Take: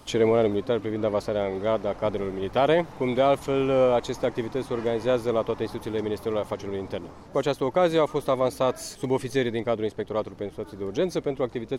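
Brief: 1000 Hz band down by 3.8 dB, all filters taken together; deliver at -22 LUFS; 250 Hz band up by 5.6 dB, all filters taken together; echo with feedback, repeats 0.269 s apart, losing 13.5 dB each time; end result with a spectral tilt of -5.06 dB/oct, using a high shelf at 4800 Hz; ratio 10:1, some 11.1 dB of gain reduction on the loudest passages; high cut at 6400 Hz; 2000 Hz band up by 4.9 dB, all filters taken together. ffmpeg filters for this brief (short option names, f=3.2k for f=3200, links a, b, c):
-af "lowpass=6.4k,equalizer=f=250:t=o:g=7.5,equalizer=f=1k:t=o:g=-8.5,equalizer=f=2k:t=o:g=7,highshelf=f=4.8k:g=6.5,acompressor=threshold=-26dB:ratio=10,aecho=1:1:269|538:0.211|0.0444,volume=9.5dB"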